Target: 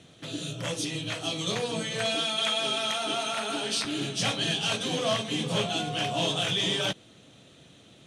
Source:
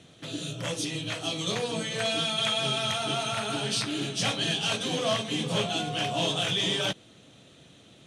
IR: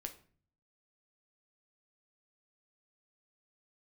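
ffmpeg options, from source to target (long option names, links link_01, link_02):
-filter_complex "[0:a]asettb=1/sr,asplit=3[link_01][link_02][link_03];[link_01]atrim=end=2.154[link_04];[link_02]atrim=start=2.15:end=3.85,asetpts=PTS-STARTPTS,afade=type=in:duration=0.004:curve=qsin,afade=type=out:start_time=1.696:duration=0.004:curve=qsin,highpass=frequency=210:width=0.5412,highpass=frequency=210:width=1.3066[link_05];[link_03]atrim=start=3.846[link_06];[link_04][link_05]acrossfade=duration=0.004:curve1=hsin:curve2=qsin[link_07];[link_07][link_06]acrossfade=duration=0.004:curve1=qsin:curve2=hsin"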